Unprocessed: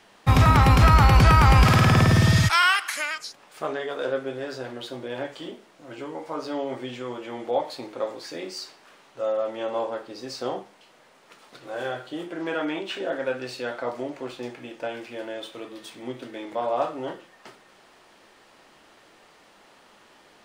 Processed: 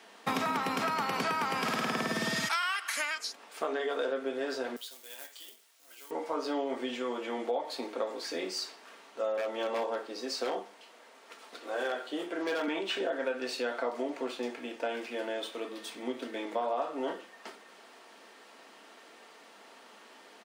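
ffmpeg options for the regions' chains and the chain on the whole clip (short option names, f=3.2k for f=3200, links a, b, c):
-filter_complex "[0:a]asettb=1/sr,asplit=3[a][b][c];[a]atrim=end=4.764[d];[b]atrim=start=4.76:end=6.11,asetpts=PTS-STARTPTS,afade=t=in:d=0.004:c=qsin,afade=t=out:st=1.346:d=0.004:c=qsin,acrusher=bits=4:mode=log:mix=0:aa=0.000001,aderivative[e];[c]atrim=start=6.106[f];[d][e]acrossfade=d=0.004:c1=hsin:c2=qsin[g];[g][f]acrossfade=d=0.004:c1=qsin:c2=hsin,asettb=1/sr,asplit=3[h][i][j];[h]atrim=end=9.374[k];[i]atrim=start=9.37:end=12.68,asetpts=PTS-STARTPTS,afade=t=in:d=0.004:c=qsin,afade=t=out:st=3.306:d=0.004:c=qsin,highpass=220,aeval=exprs='0.075*(abs(mod(val(0)/0.075+3,4)-2)-1)':c=same[l];[j]atrim=start=12.676[m];[k][l]acrossfade=d=0.004:c1=hsin:c2=qsin[n];[n][m]acrossfade=d=0.004:c1=qsin:c2=hsin,highpass=f=230:w=0.5412,highpass=f=230:w=1.3066,aecho=1:1:4.4:0.3,acompressor=threshold=-28dB:ratio=10"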